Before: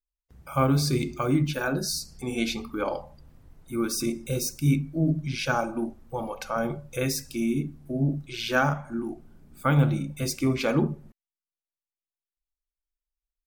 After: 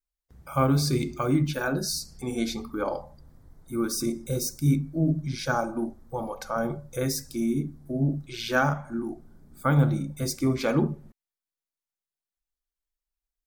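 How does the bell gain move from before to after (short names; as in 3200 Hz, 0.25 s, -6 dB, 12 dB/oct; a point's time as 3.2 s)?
bell 2700 Hz 0.43 oct
-5 dB
from 2.31 s -15 dB
from 8.23 s -5.5 dB
from 8.98 s -13.5 dB
from 10.62 s -3.5 dB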